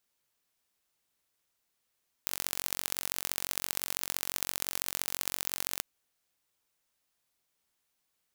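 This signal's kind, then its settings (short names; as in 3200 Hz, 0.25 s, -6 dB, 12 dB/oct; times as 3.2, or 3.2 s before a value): pulse train 45.9/s, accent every 3, -3 dBFS 3.54 s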